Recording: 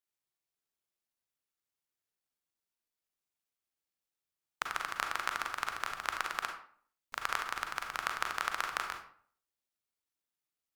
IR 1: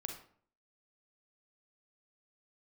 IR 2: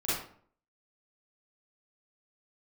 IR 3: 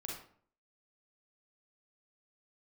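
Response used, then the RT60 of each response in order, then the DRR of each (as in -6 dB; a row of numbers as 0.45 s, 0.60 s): 1; 0.55 s, 0.55 s, 0.55 s; 3.5 dB, -11.5 dB, -2.5 dB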